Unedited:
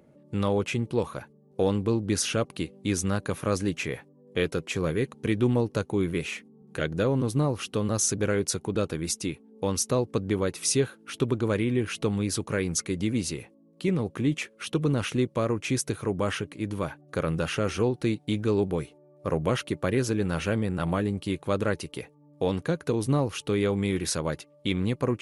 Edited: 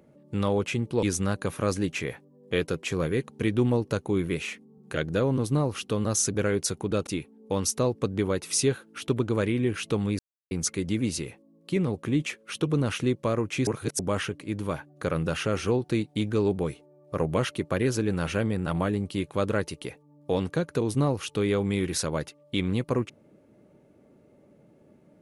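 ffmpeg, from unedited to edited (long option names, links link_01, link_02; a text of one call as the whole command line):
ffmpeg -i in.wav -filter_complex "[0:a]asplit=7[link_01][link_02][link_03][link_04][link_05][link_06][link_07];[link_01]atrim=end=1.032[link_08];[link_02]atrim=start=2.868:end=8.912[link_09];[link_03]atrim=start=9.188:end=12.31,asetpts=PTS-STARTPTS,afade=type=out:start_time=3.118:duration=0.004:curve=hsin[link_10];[link_04]atrim=start=12.31:end=12.63,asetpts=PTS-STARTPTS,volume=0[link_11];[link_05]atrim=start=12.63:end=15.792,asetpts=PTS-STARTPTS,afade=type=in:duration=0.004:curve=hsin[link_12];[link_06]atrim=start=15.788:end=16.112,asetpts=PTS-STARTPTS,areverse[link_13];[link_07]atrim=start=16.108[link_14];[link_08][link_09]acrossfade=duration=0.004:curve1=hsin:curve2=hsin[link_15];[link_10][link_11][link_12]concat=n=3:v=0:a=1[link_16];[link_15][link_16]acrossfade=duration=0.004:curve1=hsin:curve2=hsin[link_17];[link_17][link_13]acrossfade=duration=0.004:curve1=hsin:curve2=hsin[link_18];[link_18][link_14]acrossfade=duration=0.004:curve1=hsin:curve2=hsin" out.wav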